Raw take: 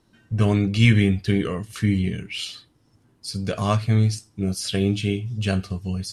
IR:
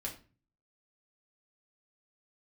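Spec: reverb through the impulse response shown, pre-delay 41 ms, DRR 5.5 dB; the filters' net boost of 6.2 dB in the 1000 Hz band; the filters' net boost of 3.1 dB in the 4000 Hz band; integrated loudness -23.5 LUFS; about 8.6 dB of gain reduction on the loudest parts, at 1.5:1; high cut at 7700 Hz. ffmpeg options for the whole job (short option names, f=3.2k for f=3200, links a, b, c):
-filter_complex "[0:a]lowpass=7.7k,equalizer=f=1k:t=o:g=7.5,equalizer=f=4k:t=o:g=4,acompressor=threshold=-35dB:ratio=1.5,asplit=2[a][b];[1:a]atrim=start_sample=2205,adelay=41[c];[b][c]afir=irnorm=-1:irlink=0,volume=-5.5dB[d];[a][d]amix=inputs=2:normalize=0,volume=4dB"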